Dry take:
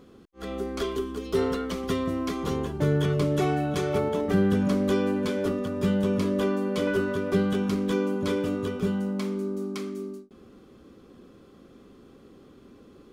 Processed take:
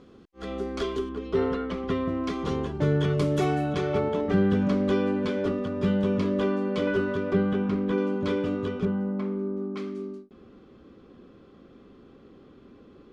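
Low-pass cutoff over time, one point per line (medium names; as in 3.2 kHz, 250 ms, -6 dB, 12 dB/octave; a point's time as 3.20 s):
6 kHz
from 1.09 s 2.7 kHz
from 2.24 s 5.1 kHz
from 3.18 s 10 kHz
from 3.73 s 4.1 kHz
from 7.33 s 2.3 kHz
from 7.98 s 3.9 kHz
from 8.85 s 1.6 kHz
from 9.77 s 3.9 kHz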